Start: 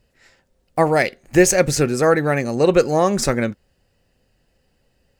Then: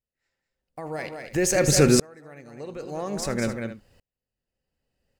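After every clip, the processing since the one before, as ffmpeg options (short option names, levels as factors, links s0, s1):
-filter_complex "[0:a]alimiter=limit=0.316:level=0:latency=1:release=26,asplit=2[s0][s1];[s1]aecho=0:1:78|198|267:0.119|0.335|0.106[s2];[s0][s2]amix=inputs=2:normalize=0,aeval=exprs='val(0)*pow(10,-37*if(lt(mod(-0.5*n/s,1),2*abs(-0.5)/1000),1-mod(-0.5*n/s,1)/(2*abs(-0.5)/1000),(mod(-0.5*n/s,1)-2*abs(-0.5)/1000)/(1-2*abs(-0.5)/1000))/20)':c=same,volume=1.88"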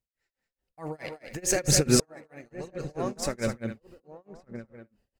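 -filter_complex "[0:a]asplit=2[s0][s1];[s1]adelay=1166,volume=0.224,highshelf=f=4000:g=-26.2[s2];[s0][s2]amix=inputs=2:normalize=0,aphaser=in_gain=1:out_gain=1:delay=4.6:decay=0.34:speed=1.1:type=triangular,tremolo=f=4.6:d=0.97"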